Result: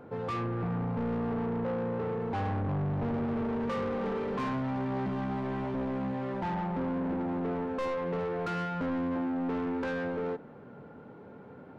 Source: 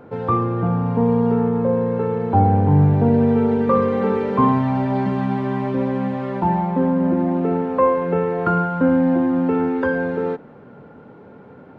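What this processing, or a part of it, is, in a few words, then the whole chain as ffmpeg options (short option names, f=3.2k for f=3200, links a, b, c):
saturation between pre-emphasis and de-emphasis: -af "highshelf=f=2k:g=9,asoftclip=type=tanh:threshold=-23dB,highshelf=f=2k:g=-9,volume=-6dB"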